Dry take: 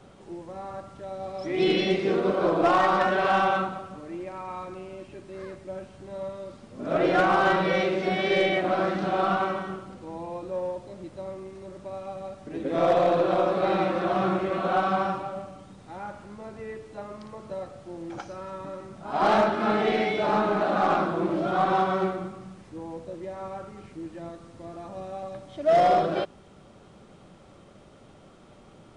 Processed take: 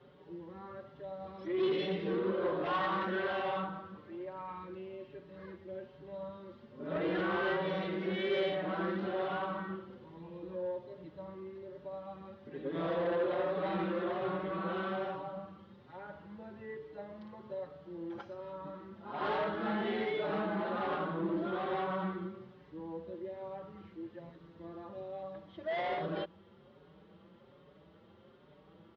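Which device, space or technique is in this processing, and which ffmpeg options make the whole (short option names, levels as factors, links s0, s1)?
barber-pole flanger into a guitar amplifier: -filter_complex "[0:a]asplit=2[s0][s1];[s1]adelay=5.2,afreqshift=1.2[s2];[s0][s2]amix=inputs=2:normalize=1,asoftclip=type=tanh:threshold=0.0708,highpass=93,equalizer=f=120:t=q:w=4:g=-8,equalizer=f=260:t=q:w=4:g=-7,equalizer=f=710:t=q:w=4:g=-10,equalizer=f=1300:t=q:w=4:g=-5,equalizer=f=2400:t=q:w=4:g=-8,lowpass=f=3500:w=0.5412,lowpass=f=3500:w=1.3066,volume=0.841"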